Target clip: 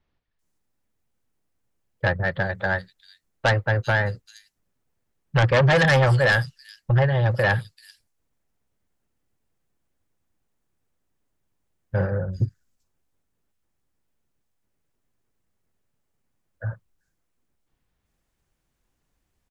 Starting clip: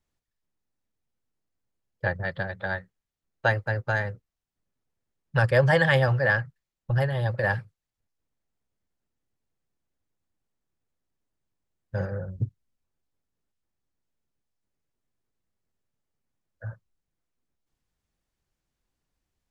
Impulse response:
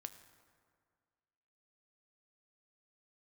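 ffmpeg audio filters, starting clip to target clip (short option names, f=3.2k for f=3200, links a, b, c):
-filter_complex "[0:a]acrossover=split=4500[a][b];[b]adelay=390[c];[a][c]amix=inputs=2:normalize=0,aeval=exprs='0.376*(cos(1*acos(clip(val(0)/0.376,-1,1)))-cos(1*PI/2))+0.15*(cos(5*acos(clip(val(0)/0.376,-1,1)))-cos(5*PI/2))':c=same,volume=-2.5dB"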